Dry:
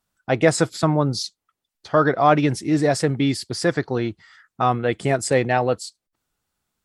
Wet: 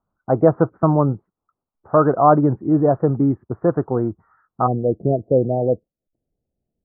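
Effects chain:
Butterworth low-pass 1,300 Hz 48 dB per octave, from 0:04.66 660 Hz
level +3 dB

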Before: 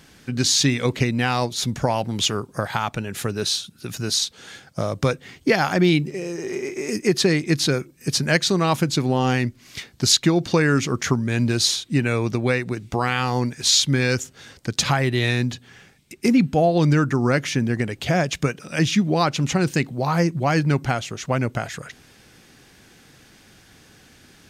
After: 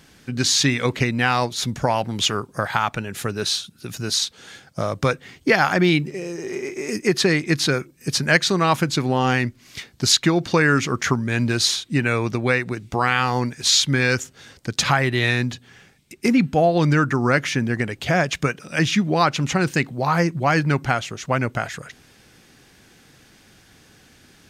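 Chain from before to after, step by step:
dynamic equaliser 1,500 Hz, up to +6 dB, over −34 dBFS, Q 0.7
level −1 dB

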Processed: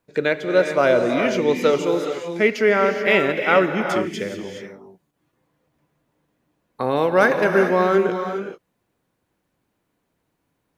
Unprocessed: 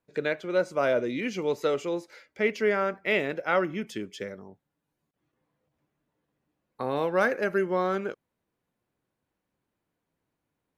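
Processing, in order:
reverb whose tail is shaped and stops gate 450 ms rising, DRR 5 dB
level +8 dB

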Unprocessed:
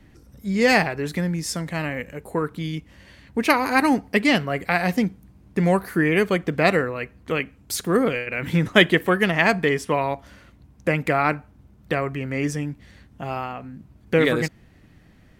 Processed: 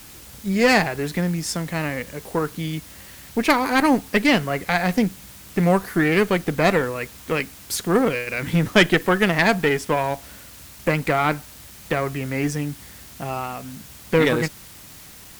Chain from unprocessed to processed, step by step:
in parallel at −5 dB: bit-depth reduction 6 bits, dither triangular
on the sum: tube saturation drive 6 dB, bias 0.55

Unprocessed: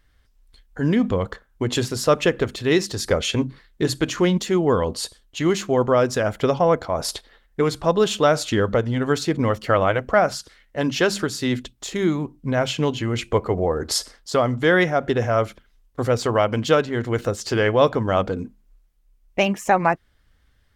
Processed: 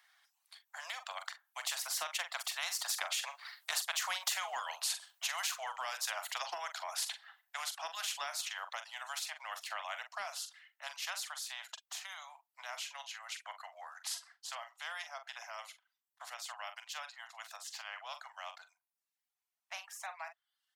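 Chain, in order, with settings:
source passing by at 0:04.39, 11 m/s, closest 1.9 metres
reverb reduction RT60 0.6 s
Butterworth high-pass 680 Hz 96 dB per octave
downward compressor 6 to 1, threshold −47 dBFS, peak gain reduction 19 dB
double-tracking delay 43 ms −12.5 dB
every bin compressed towards the loudest bin 2 to 1
level +14.5 dB

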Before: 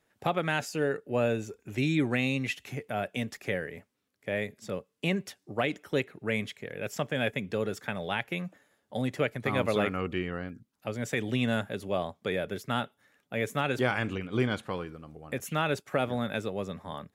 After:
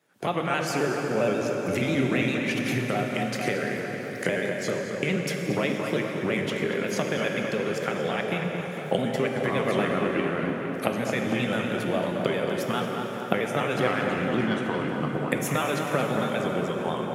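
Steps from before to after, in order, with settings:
pitch shifter gated in a rhythm −2 semitones, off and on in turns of 67 ms
camcorder AGC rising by 52 dB per second
high-pass filter 130 Hz 24 dB per octave
tape delay 228 ms, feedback 76%, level −5.5 dB, low-pass 2,400 Hz
dense smooth reverb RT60 4.4 s, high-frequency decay 0.8×, DRR 2.5 dB
level +1 dB

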